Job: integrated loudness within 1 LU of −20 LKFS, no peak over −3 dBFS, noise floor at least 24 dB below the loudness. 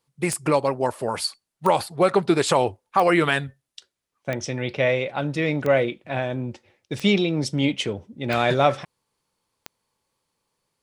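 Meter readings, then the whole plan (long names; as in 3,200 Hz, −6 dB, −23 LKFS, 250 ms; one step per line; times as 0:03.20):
number of clicks 8; integrated loudness −23.0 LKFS; sample peak −5.0 dBFS; target loudness −20.0 LKFS
→ click removal
level +3 dB
brickwall limiter −3 dBFS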